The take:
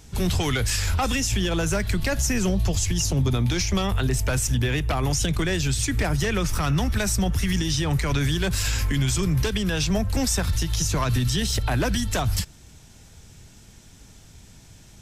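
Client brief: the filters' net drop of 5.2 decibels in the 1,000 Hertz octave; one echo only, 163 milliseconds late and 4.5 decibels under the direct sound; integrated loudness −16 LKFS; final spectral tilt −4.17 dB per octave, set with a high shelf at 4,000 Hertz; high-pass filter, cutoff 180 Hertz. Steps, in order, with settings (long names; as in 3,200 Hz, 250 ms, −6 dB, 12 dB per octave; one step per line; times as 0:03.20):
high-pass filter 180 Hz
parametric band 1,000 Hz −7 dB
high-shelf EQ 4,000 Hz −6 dB
single-tap delay 163 ms −4.5 dB
level +11 dB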